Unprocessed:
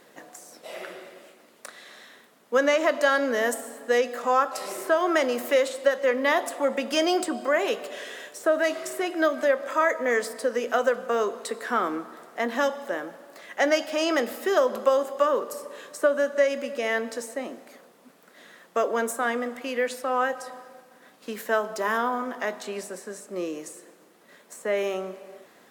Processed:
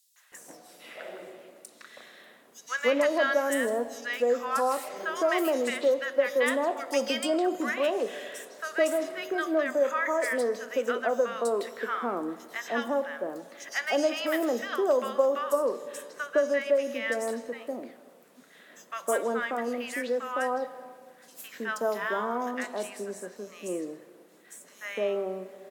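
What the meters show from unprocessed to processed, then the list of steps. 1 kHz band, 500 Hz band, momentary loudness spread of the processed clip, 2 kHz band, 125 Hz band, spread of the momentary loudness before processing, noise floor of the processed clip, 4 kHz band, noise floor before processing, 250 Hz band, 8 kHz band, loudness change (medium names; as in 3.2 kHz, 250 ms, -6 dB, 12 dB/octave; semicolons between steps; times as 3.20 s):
-4.5 dB, -2.5 dB, 16 LU, -3.5 dB, no reading, 16 LU, -56 dBFS, -3.5 dB, -56 dBFS, -2.0 dB, -3.0 dB, -3.0 dB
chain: three bands offset in time highs, mids, lows 160/320 ms, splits 1.1/4.7 kHz; trim -2 dB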